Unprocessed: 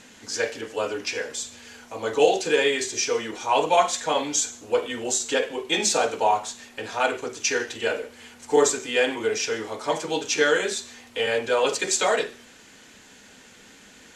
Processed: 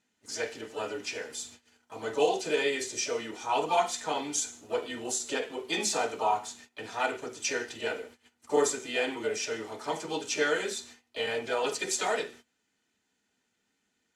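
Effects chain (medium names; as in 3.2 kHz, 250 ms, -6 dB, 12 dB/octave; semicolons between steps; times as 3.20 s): comb of notches 550 Hz; gate -43 dBFS, range -21 dB; harmony voices +5 st -12 dB; trim -6 dB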